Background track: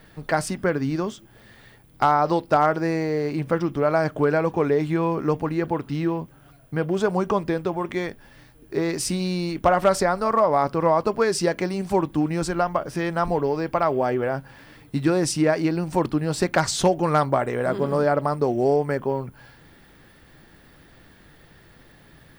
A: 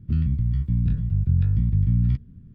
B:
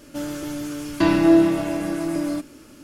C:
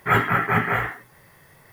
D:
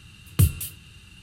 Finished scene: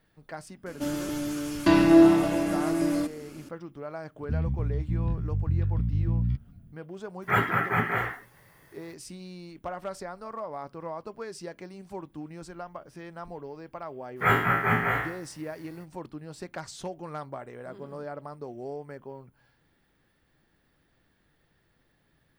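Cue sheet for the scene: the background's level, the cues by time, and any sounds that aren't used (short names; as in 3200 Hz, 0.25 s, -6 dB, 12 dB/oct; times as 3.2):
background track -17.5 dB
0.66 add B -1.5 dB
4.2 add A -6 dB
7.22 add C -5 dB + HPF 58 Hz
14.15 add C -5.5 dB, fades 0.05 s + spectral trails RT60 0.55 s
not used: D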